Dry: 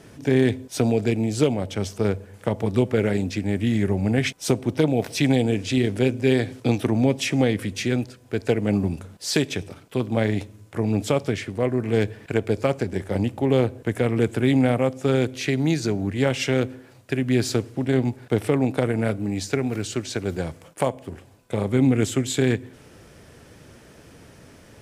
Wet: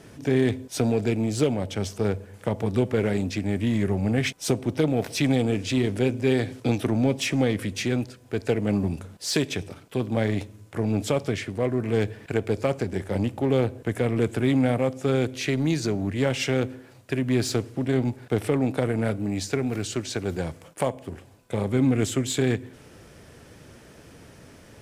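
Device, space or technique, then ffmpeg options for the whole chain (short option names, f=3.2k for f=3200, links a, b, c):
parallel distortion: -filter_complex "[0:a]asplit=2[a][b];[b]asoftclip=type=hard:threshold=-24.5dB,volume=-6dB[c];[a][c]amix=inputs=2:normalize=0,volume=-4dB"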